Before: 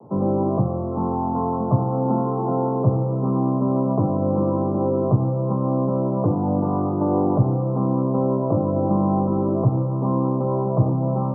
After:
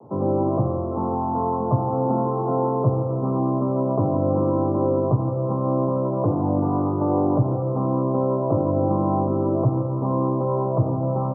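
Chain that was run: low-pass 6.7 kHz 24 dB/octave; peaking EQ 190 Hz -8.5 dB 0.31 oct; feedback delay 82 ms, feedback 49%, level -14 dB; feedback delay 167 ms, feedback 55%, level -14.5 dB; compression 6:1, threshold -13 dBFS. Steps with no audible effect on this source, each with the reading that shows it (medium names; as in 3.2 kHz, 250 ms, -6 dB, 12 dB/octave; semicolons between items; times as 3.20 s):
low-pass 6.7 kHz: input has nothing above 1.2 kHz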